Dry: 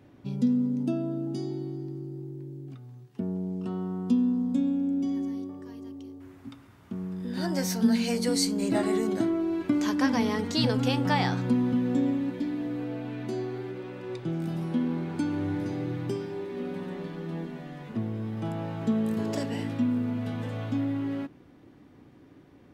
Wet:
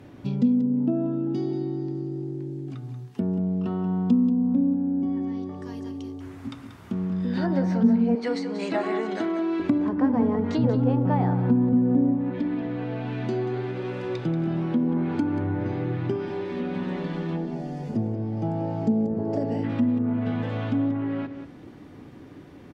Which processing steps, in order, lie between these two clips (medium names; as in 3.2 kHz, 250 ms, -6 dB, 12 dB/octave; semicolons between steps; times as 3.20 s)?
8.15–9.60 s: frequency weighting A; low-pass that closes with the level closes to 770 Hz, closed at -23 dBFS; 17.36–19.64 s: time-frequency box 900–4300 Hz -11 dB; in parallel at +2 dB: compression, threshold -36 dBFS, peak gain reduction 17 dB; on the sum: delay 185 ms -11 dB; on a send at -21.5 dB: reverberation, pre-delay 3 ms; on the sum: trim +1.5 dB